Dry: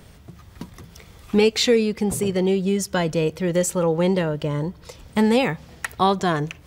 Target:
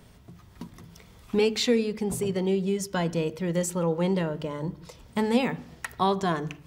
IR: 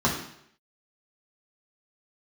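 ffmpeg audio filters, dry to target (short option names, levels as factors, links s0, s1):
-filter_complex "[0:a]asplit=2[s0][s1];[1:a]atrim=start_sample=2205,afade=t=out:st=0.32:d=0.01,atrim=end_sample=14553,lowpass=3800[s2];[s1][s2]afir=irnorm=-1:irlink=0,volume=0.0501[s3];[s0][s3]amix=inputs=2:normalize=0,volume=0.473"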